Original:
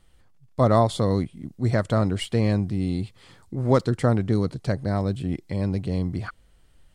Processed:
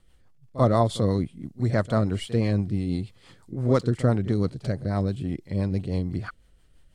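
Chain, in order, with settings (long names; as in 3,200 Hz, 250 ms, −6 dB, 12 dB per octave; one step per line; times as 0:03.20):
echo ahead of the sound 41 ms −15 dB
rotating-speaker cabinet horn 6 Hz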